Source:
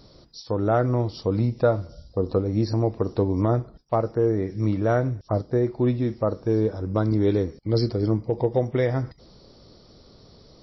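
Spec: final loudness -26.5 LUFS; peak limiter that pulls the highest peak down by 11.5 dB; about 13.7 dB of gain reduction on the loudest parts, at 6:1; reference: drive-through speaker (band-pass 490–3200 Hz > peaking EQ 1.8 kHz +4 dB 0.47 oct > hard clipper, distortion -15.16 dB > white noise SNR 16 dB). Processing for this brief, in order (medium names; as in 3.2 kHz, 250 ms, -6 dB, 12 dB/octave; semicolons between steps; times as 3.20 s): compression 6:1, threshold -31 dBFS; peak limiter -29.5 dBFS; band-pass 490–3200 Hz; peaking EQ 1.8 kHz +4 dB 0.47 oct; hard clipper -38 dBFS; white noise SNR 16 dB; trim +21 dB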